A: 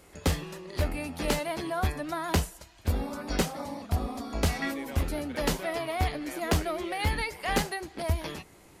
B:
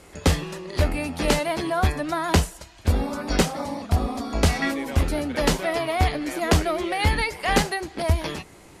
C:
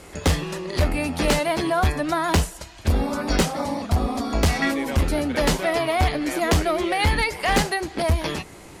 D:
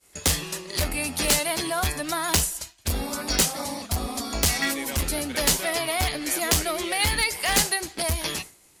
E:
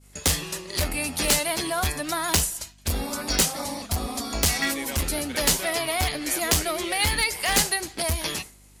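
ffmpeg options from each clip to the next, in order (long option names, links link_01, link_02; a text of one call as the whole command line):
ffmpeg -i in.wav -af "lowpass=11000,volume=7dB" out.wav
ffmpeg -i in.wav -filter_complex "[0:a]asplit=2[link_01][link_02];[link_02]acompressor=threshold=-29dB:ratio=4,volume=-2dB[link_03];[link_01][link_03]amix=inputs=2:normalize=0,asoftclip=type=hard:threshold=-13.5dB" out.wav
ffmpeg -i in.wav -af "crystalizer=i=5.5:c=0,agate=range=-33dB:threshold=-25dB:ratio=3:detection=peak,volume=-7.5dB" out.wav
ffmpeg -i in.wav -af "aeval=exprs='val(0)+0.00224*(sin(2*PI*50*n/s)+sin(2*PI*2*50*n/s)/2+sin(2*PI*3*50*n/s)/3+sin(2*PI*4*50*n/s)/4+sin(2*PI*5*50*n/s)/5)':channel_layout=same" out.wav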